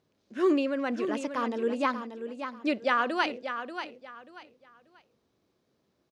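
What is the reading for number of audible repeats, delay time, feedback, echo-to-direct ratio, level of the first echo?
3, 586 ms, 26%, −8.5 dB, −9.0 dB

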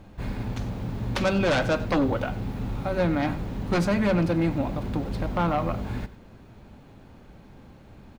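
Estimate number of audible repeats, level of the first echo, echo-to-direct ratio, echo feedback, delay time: 1, −17.0 dB, −17.0 dB, repeats not evenly spaced, 94 ms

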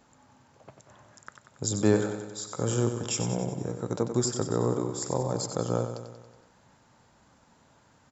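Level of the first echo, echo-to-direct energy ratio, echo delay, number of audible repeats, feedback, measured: −8.5 dB, −6.5 dB, 93 ms, 6, 59%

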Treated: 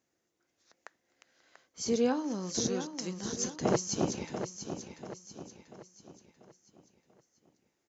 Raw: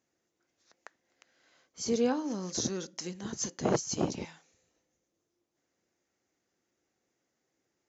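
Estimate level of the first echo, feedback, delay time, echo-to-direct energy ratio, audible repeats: −9.0 dB, 44%, 689 ms, −8.0 dB, 4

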